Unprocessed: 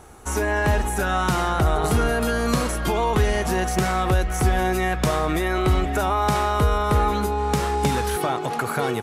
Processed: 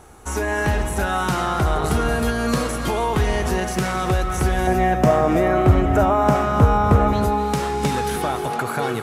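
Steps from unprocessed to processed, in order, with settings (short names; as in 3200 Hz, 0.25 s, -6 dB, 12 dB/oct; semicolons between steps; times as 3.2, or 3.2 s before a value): 4.67–7.13 fifteen-band EQ 100 Hz +11 dB, 250 Hz +8 dB, 630 Hz +9 dB, 4000 Hz -10 dB, 10000 Hz -8 dB; reverb, pre-delay 3 ms, DRR 7.5 dB; Doppler distortion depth 0.18 ms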